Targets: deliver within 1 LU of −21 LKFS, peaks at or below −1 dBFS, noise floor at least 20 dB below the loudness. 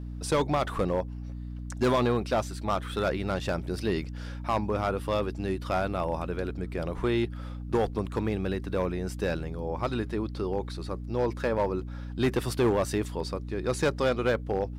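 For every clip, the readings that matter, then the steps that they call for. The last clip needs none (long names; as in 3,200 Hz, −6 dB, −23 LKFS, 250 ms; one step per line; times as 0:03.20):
share of clipped samples 1.0%; peaks flattened at −19.0 dBFS; mains hum 60 Hz; hum harmonics up to 300 Hz; level of the hum −35 dBFS; integrated loudness −30.0 LKFS; sample peak −19.0 dBFS; target loudness −21.0 LKFS
→ clipped peaks rebuilt −19 dBFS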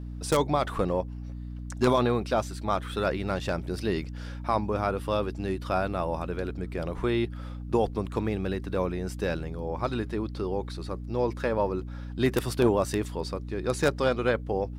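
share of clipped samples 0.0%; mains hum 60 Hz; hum harmonics up to 300 Hz; level of the hum −35 dBFS
→ mains-hum notches 60/120/180/240/300 Hz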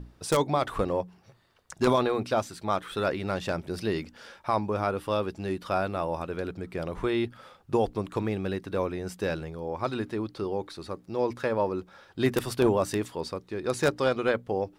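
mains hum none found; integrated loudness −29.5 LKFS; sample peak −10.0 dBFS; target loudness −21.0 LKFS
→ level +8.5 dB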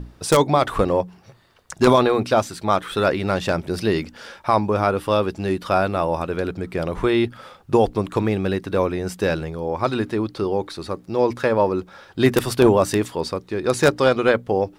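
integrated loudness −21.0 LKFS; sample peak −1.5 dBFS; background noise floor −52 dBFS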